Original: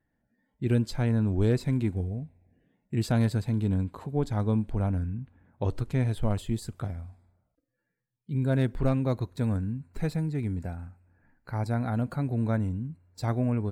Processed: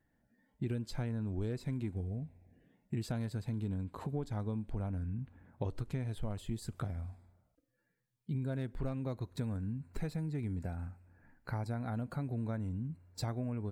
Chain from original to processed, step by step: compression 6:1, threshold -35 dBFS, peak gain reduction 15 dB; trim +1 dB

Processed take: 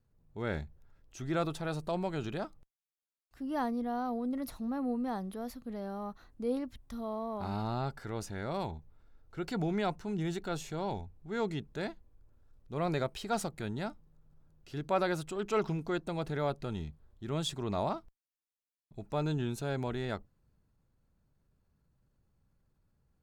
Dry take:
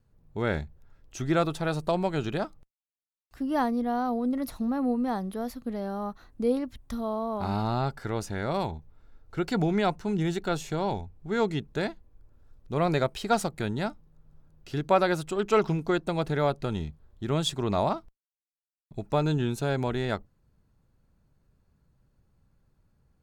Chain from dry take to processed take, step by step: transient shaper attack -3 dB, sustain +2 dB; trim -6.5 dB

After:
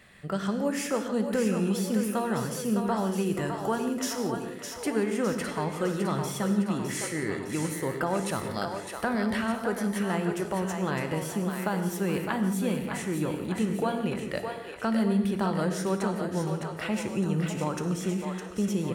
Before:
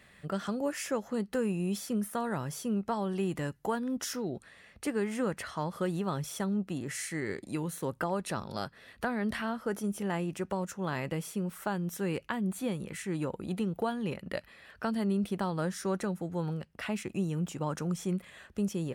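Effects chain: two-band feedback delay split 400 Hz, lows 102 ms, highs 609 ms, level -6 dB; gated-style reverb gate 200 ms flat, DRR 7.5 dB; trim +3 dB

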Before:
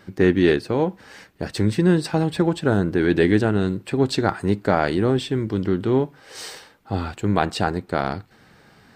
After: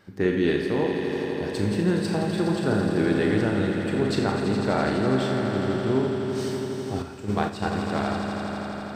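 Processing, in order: echo with a slow build-up 83 ms, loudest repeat 5, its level -10.5 dB; Schroeder reverb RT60 0.67 s, combs from 27 ms, DRR 3 dB; 7.02–7.72 s: gate -17 dBFS, range -7 dB; trim -7 dB

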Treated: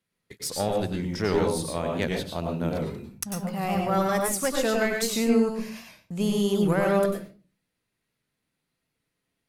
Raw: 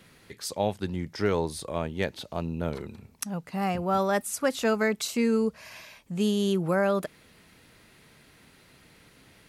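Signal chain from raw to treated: single-diode clipper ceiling -21 dBFS; gate -45 dBFS, range -28 dB; treble shelf 5.6 kHz +6 dB; reverberation RT60 0.35 s, pre-delay 94 ms, DRR 1 dB; warped record 78 rpm, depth 100 cents

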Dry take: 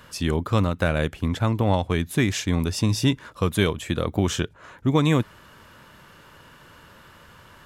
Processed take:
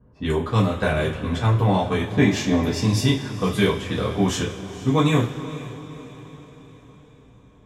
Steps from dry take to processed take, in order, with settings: 2.07–2.81 s: fifteen-band graphic EQ 250 Hz +5 dB, 630 Hz +9 dB, 10 kHz -10 dB; level-controlled noise filter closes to 300 Hz, open at -19 dBFS; on a send: echo that smears into a reverb 480 ms, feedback 52%, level -14.5 dB; on the sum: two-slope reverb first 0.27 s, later 1.9 s, from -19 dB, DRR -6 dB; trim -5 dB

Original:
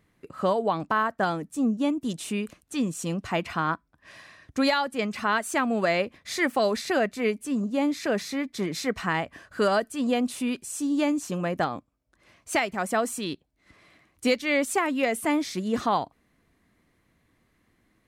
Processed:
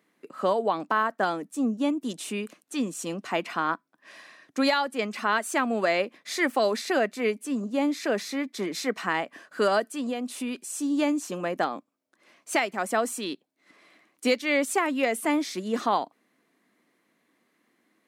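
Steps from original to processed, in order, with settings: high-pass 220 Hz 24 dB/octave; 9.93–10.56 s: compression 4:1, threshold -28 dBFS, peak gain reduction 7.5 dB

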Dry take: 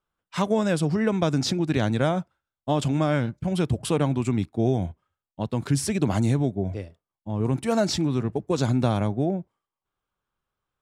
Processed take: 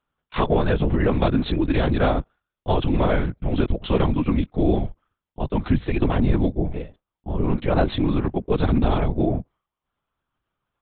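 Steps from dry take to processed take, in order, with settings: LPC vocoder at 8 kHz whisper; trim +3.5 dB

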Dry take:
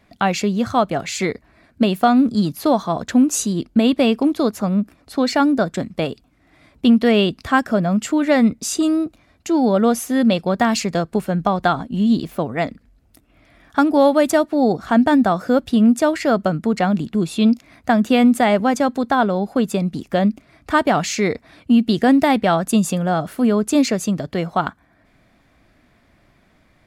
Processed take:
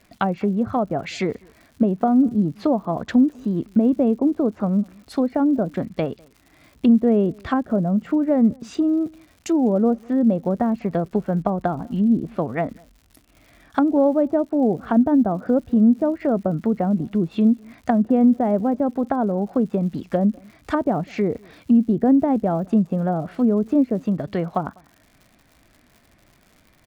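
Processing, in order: low-pass that closes with the level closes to 600 Hz, closed at -14.5 dBFS; crackle 170 per s -40 dBFS; echo from a far wall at 34 m, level -28 dB; trim -1.5 dB

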